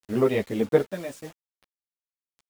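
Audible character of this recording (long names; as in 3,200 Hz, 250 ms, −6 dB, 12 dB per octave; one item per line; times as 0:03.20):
sample-and-hold tremolo, depth 90%
a quantiser's noise floor 8 bits, dither none
a shimmering, thickened sound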